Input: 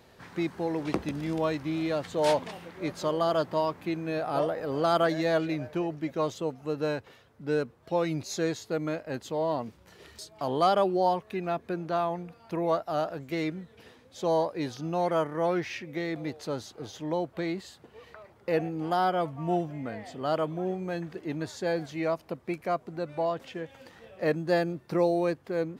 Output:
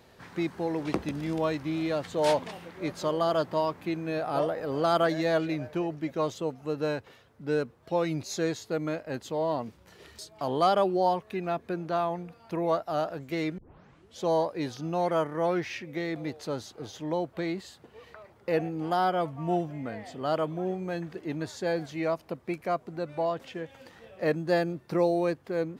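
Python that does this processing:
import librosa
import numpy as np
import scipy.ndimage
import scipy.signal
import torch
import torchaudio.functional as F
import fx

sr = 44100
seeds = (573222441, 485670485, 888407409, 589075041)

y = fx.edit(x, sr, fx.tape_start(start_s=13.58, length_s=0.62), tone=tone)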